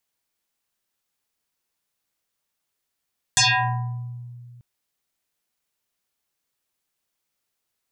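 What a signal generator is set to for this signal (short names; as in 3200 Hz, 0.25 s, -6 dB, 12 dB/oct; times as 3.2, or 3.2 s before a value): FM tone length 1.24 s, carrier 121 Hz, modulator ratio 7.22, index 10, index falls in 0.93 s exponential, decay 2.43 s, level -13 dB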